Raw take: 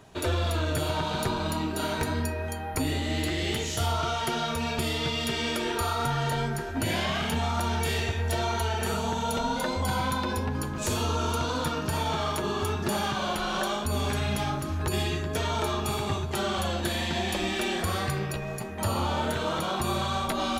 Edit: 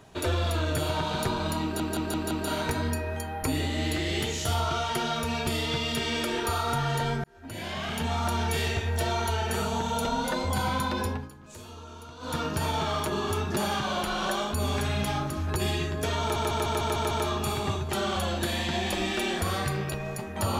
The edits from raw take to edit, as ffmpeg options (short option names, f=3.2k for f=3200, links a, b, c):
-filter_complex "[0:a]asplit=14[a][b][c][d][e][f][g][h][i][j][k][l][m][n];[a]atrim=end=1.802[o];[b]atrim=start=1.628:end=1.802[p];[c]atrim=start=1.628:end=1.802[q];[d]atrim=start=1.628:end=1.802[r];[e]atrim=start=1.628:end=6.56,asetpts=PTS-STARTPTS,afade=t=out:st=4.928:d=0.004:c=hsin[s];[f]atrim=start=6.56:end=10.61,asetpts=PTS-STARTPTS,afade=t=in:d=0.98,afade=t=out:st=3.85:d=0.2:silence=0.149624[t];[g]atrim=start=10.61:end=11.51,asetpts=PTS-STARTPTS,volume=-16.5dB[u];[h]atrim=start=11.51:end=15.682,asetpts=PTS-STARTPTS,afade=t=in:d=0.2:silence=0.149624[v];[i]atrim=start=15.528:end=15.682[w];[j]atrim=start=15.528:end=15.682[x];[k]atrim=start=15.528:end=15.682[y];[l]atrim=start=15.528:end=15.682[z];[m]atrim=start=15.528:end=15.682[aa];[n]atrim=start=15.528[ab];[o][p]acrossfade=d=0.004:c1=hsin:c2=hsin[ac];[ac][q]acrossfade=d=0.004:c1=hsin:c2=hsin[ad];[ad][r]acrossfade=d=0.004:c1=hsin:c2=hsin[ae];[s][t][u][v]concat=n=4:v=0:a=1[af];[ae][af]acrossfade=d=0.004:c1=hsin:c2=hsin[ag];[ag][w]acrossfade=d=0.004:c1=hsin:c2=hsin[ah];[ah][x]acrossfade=d=0.004:c1=hsin:c2=hsin[ai];[ai][y]acrossfade=d=0.004:c1=hsin:c2=hsin[aj];[aj][z]acrossfade=d=0.004:c1=hsin:c2=hsin[ak];[ak][aa]acrossfade=d=0.004:c1=hsin:c2=hsin[al];[al][ab]acrossfade=d=0.004:c1=hsin:c2=hsin"